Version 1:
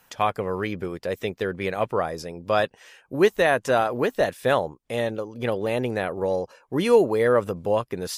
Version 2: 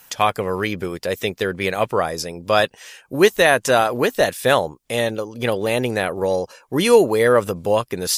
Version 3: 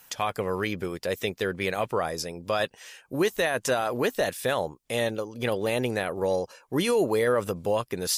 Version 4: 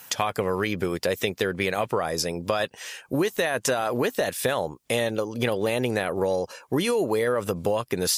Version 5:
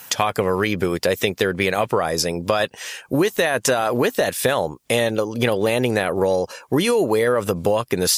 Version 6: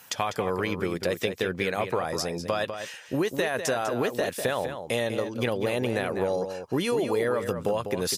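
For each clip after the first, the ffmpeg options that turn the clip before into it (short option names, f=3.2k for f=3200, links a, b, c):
-af "highshelf=f=3k:g=10.5,volume=4dB"
-af "alimiter=limit=-10dB:level=0:latency=1:release=24,volume=-5.5dB"
-af "highpass=61,acompressor=threshold=-29dB:ratio=6,volume=8dB"
-af "aeval=exprs='clip(val(0),-1,0.178)':c=same,volume=5.5dB"
-filter_complex "[0:a]highshelf=f=7k:g=-4.5,asplit=2[a][b];[b]adelay=198.3,volume=-8dB,highshelf=f=4k:g=-4.46[c];[a][c]amix=inputs=2:normalize=0,volume=-8dB"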